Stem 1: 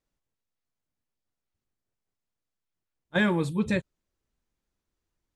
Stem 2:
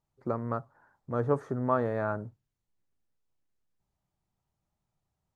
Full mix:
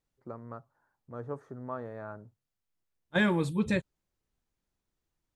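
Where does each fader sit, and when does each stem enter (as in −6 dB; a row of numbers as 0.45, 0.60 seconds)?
−2.0, −11.0 decibels; 0.00, 0.00 seconds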